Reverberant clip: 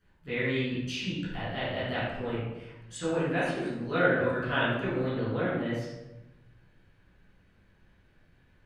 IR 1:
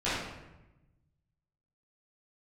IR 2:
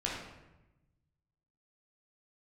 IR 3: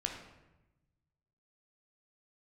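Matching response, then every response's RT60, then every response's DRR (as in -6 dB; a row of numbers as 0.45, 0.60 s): 1; 1.0, 1.0, 1.0 s; -13.5, -4.5, 1.5 dB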